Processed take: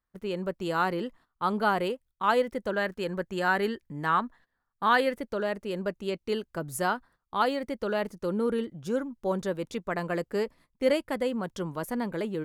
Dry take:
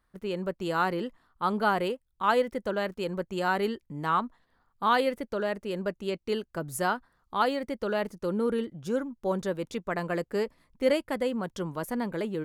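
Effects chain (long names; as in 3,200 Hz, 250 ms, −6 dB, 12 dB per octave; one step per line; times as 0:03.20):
noise gate −53 dBFS, range −13 dB
0:02.73–0:05.16: parametric band 1,700 Hz +8 dB 0.34 octaves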